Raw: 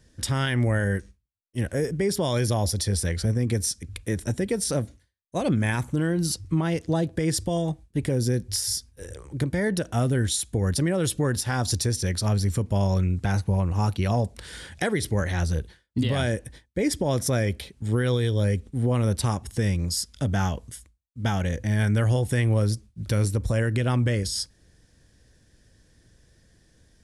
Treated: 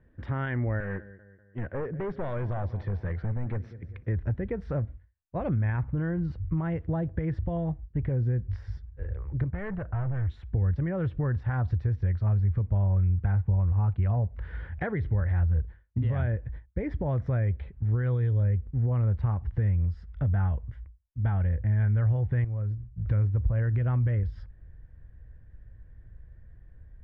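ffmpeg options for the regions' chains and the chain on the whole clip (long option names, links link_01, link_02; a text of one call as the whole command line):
ffmpeg -i in.wav -filter_complex "[0:a]asettb=1/sr,asplit=3[link_01][link_02][link_03];[link_01]atrim=end=0.804[link_04];[link_02]atrim=start=0.8:end=4.06,asetpts=PTS-STARTPTS,afade=type=in:duration=0.004:curve=qsin,afade=type=out:start_time=3.256:duration=0.004:curve=qsin,highpass=140,lowpass=6400,aecho=1:1:195|390|585|780:0.112|0.0539|0.0259|0.0124,atrim=end_sample=143766,volume=24.5dB,asoftclip=hard,volume=-24.5dB[link_05];[link_03]atrim=start=4.056[link_06];[link_04][link_05]acrossfade=duration=0.004:curve1=hsin:curve2=qsin[link_07];[link_07][link_06]acrossfade=duration=0.004:curve1=qsin:curve2=hsin,asettb=1/sr,asplit=3[link_08][link_09][link_10];[link_08]atrim=end=9.484[link_11];[link_09]atrim=start=9.48:end=10.3,asetpts=PTS-STARTPTS,afade=type=in:duration=0.004:curve=qsin,afade=type=out:start_time=0.816:duration=0.004:curve=qsin,lowpass=frequency=2300:width=0.5412,lowpass=frequency=2300:width=1.3066,equalizer=frequency=280:width_type=o:width=0.73:gain=-8,volume=27.5dB,asoftclip=hard,volume=-27.5dB[link_12];[link_10]atrim=start=10.296[link_13];[link_11][link_12]acrossfade=duration=0.004:curve1=hsin:curve2=qsin[link_14];[link_14][link_13]acrossfade=duration=0.004:curve1=qsin:curve2=hsin,asettb=1/sr,asplit=3[link_15][link_16][link_17];[link_15]atrim=end=22.444[link_18];[link_16]atrim=start=22.44:end=23.05,asetpts=PTS-STARTPTS,afade=type=in:duration=0.004:curve=qsin,afade=type=out:start_time=0.606:duration=0.004:curve=qsin,bandreject=frequency=60:width_type=h:width=6,bandreject=frequency=120:width_type=h:width=6,bandreject=frequency=180:width_type=h:width=6,bandreject=frequency=240:width_type=h:width=6,bandreject=frequency=300:width_type=h:width=6,bandreject=frequency=360:width_type=h:width=6,acompressor=threshold=-32dB:ratio=4:attack=3.2:release=140:knee=1:detection=peak[link_19];[link_17]atrim=start=23.046[link_20];[link_18][link_19]acrossfade=duration=0.004:curve1=hsin:curve2=qsin[link_21];[link_21][link_20]acrossfade=duration=0.004:curve1=qsin:curve2=hsin,lowpass=frequency=1900:width=0.5412,lowpass=frequency=1900:width=1.3066,asubboost=boost=7.5:cutoff=92,acompressor=threshold=-25dB:ratio=2,volume=-2.5dB" out.wav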